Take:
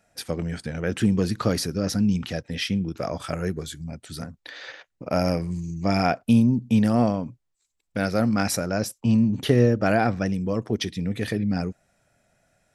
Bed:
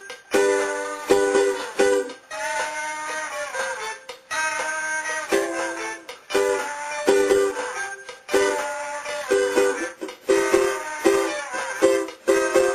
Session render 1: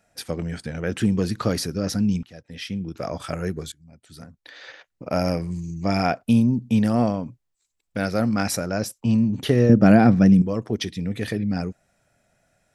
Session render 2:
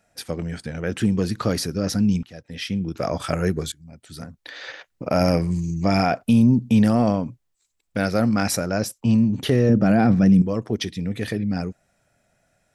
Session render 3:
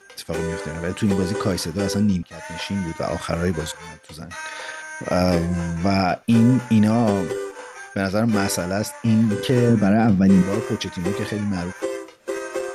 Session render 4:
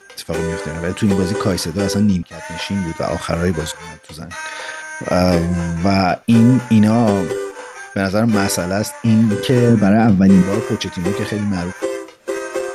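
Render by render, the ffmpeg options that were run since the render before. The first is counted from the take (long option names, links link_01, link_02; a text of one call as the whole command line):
ffmpeg -i in.wav -filter_complex "[0:a]asettb=1/sr,asplit=3[link_01][link_02][link_03];[link_01]atrim=end=9.694[link_04];[link_02]atrim=start=9.69:end=10.42,asetpts=PTS-STARTPTS,afade=type=in:duration=0.004:curve=qsin,afade=type=out:start_time=0.726:duration=0.004:curve=qsin,equalizer=frequency=190:width_type=o:width=1.7:gain=13[link_05];[link_03]atrim=start=10.416[link_06];[link_04][link_05]acrossfade=duration=0.004:curve1=hsin:curve2=qsin[link_07];[link_07][link_06]acrossfade=duration=0.004:curve1=qsin:curve2=hsin,asplit=3[link_08][link_09][link_10];[link_08]atrim=end=2.23,asetpts=PTS-STARTPTS,afade=type=out:start_time=2.226:duration=0.004:curve=hsin:silence=0.0841395[link_11];[link_09]atrim=start=2.23:end=3.72,asetpts=PTS-STARTPTS,afade=type=in:duration=0.91:silence=0.0841395,afade=type=out:start_time=1.486:duration=0.004:curve=hsin:silence=0.0707946[link_12];[link_10]atrim=start=3.72,asetpts=PTS-STARTPTS,afade=type=in:duration=1.33:silence=0.0707946[link_13];[link_11][link_12][link_13]concat=n=3:v=0:a=1" out.wav
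ffmpeg -i in.wav -af "dynaudnorm=framelen=310:gausssize=17:maxgain=11.5dB,alimiter=limit=-8dB:level=0:latency=1:release=16" out.wav
ffmpeg -i in.wav -i bed.wav -filter_complex "[1:a]volume=-9dB[link_01];[0:a][link_01]amix=inputs=2:normalize=0" out.wav
ffmpeg -i in.wav -af "volume=4.5dB,alimiter=limit=-2dB:level=0:latency=1" out.wav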